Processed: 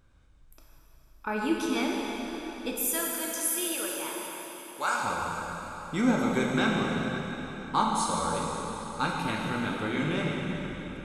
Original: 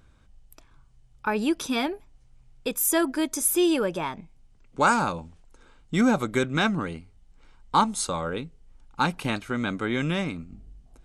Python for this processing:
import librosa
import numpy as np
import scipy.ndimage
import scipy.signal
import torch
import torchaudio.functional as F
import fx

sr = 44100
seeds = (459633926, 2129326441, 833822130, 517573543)

y = fx.highpass(x, sr, hz=1300.0, slope=6, at=(2.75, 5.03), fade=0.02)
y = fx.rev_plate(y, sr, seeds[0], rt60_s=4.3, hf_ratio=0.85, predelay_ms=0, drr_db=-3.0)
y = y * 10.0 ** (-6.5 / 20.0)